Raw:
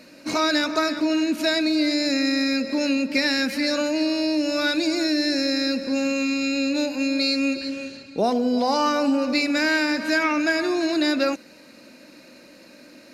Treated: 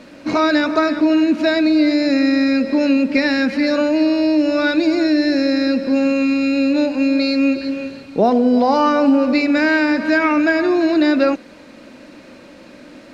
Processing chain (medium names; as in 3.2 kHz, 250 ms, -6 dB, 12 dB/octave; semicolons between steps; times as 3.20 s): word length cut 8-bit, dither triangular; tape spacing loss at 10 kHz 25 dB; trim +8.5 dB